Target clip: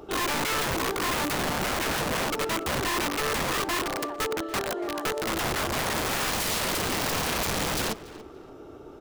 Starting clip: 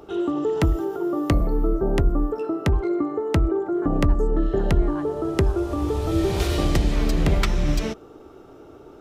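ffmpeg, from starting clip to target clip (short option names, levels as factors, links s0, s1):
-filter_complex "[0:a]asettb=1/sr,asplit=3[s0][s1][s2];[s0]atrim=end=3.824[s3];[s1]atrim=start=3.82:end=5.27,asetpts=PTS-STARTPTS,afade=t=in:d=0.004:c=qsin,afade=t=out:st=1.446:d=0.004:c=qsin,highpass=f=400:w=0.5412,highpass=f=400:w=1.3066[s4];[s2]atrim=start=5.266[s5];[s3][s4]acrossfade=d=0.004:c1=hsin:c2=qsin[s6];[s6][s5]acrossfade=d=0.004:c1=qsin:c2=hsin,aeval=exprs='(mod(14.1*val(0)+1,2)-1)/14.1':c=same,asplit=2[s7][s8];[s8]adelay=285,lowpass=f=4400:p=1,volume=0.133,asplit=2[s9][s10];[s10]adelay=285,lowpass=f=4400:p=1,volume=0.28,asplit=2[s11][s12];[s12]adelay=285,lowpass=f=4400:p=1,volume=0.28[s13];[s7][s9][s11][s13]amix=inputs=4:normalize=0"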